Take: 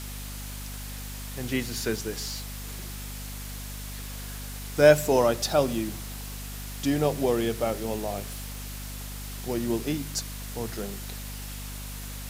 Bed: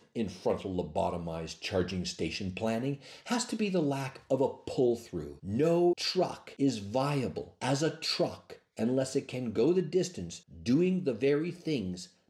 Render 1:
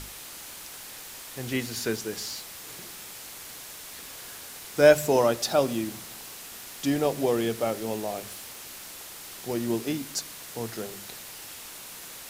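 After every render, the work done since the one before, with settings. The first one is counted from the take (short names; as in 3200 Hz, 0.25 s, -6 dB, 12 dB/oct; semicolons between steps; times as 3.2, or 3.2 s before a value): notches 50/100/150/200/250 Hz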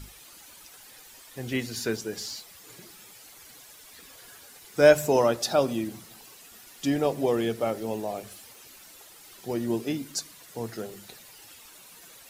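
denoiser 11 dB, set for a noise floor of -43 dBFS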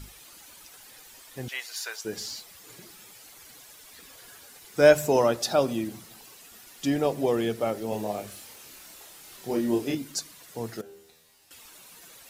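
1.48–2.05 HPF 740 Hz 24 dB/oct; 7.89–9.95 doubler 29 ms -2.5 dB; 10.81–11.51 resonator 80 Hz, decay 0.76 s, mix 90%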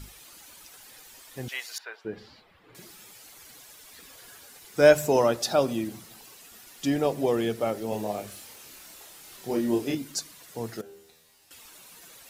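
1.78–2.75 air absorption 460 m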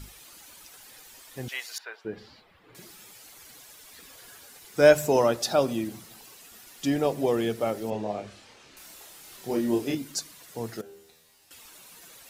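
7.9–8.77 air absorption 120 m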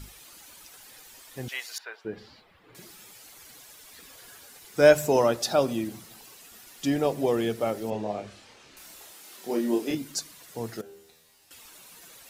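9.11–9.91 HPF 190 Hz 24 dB/oct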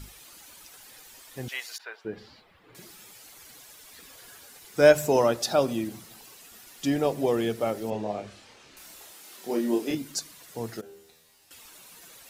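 ending taper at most 480 dB/s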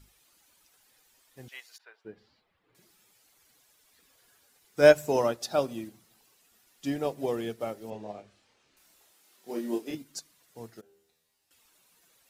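upward expander 1.5:1, over -43 dBFS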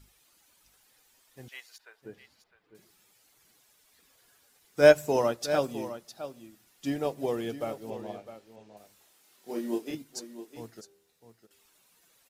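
echo 0.657 s -12.5 dB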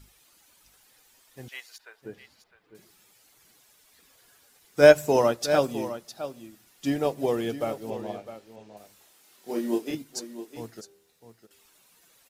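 gain +4.5 dB; limiter -3 dBFS, peak gain reduction 2.5 dB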